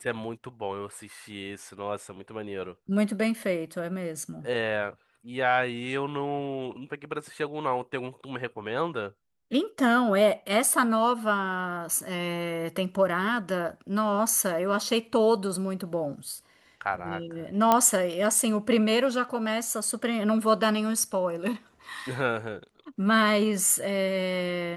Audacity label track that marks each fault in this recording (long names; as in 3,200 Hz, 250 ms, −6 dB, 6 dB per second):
17.720000	17.720000	click −7 dBFS